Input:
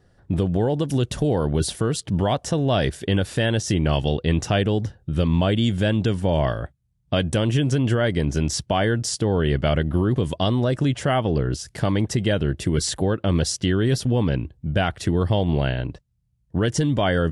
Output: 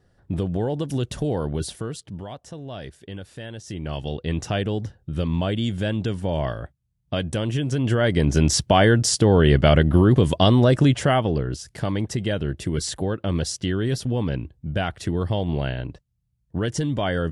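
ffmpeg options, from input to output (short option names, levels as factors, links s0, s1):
-af "volume=6.68,afade=t=out:st=1.37:d=0.89:silence=0.266073,afade=t=in:st=3.58:d=0.87:silence=0.281838,afade=t=in:st=7.69:d=0.82:silence=0.354813,afade=t=out:st=10.78:d=0.68:silence=0.375837"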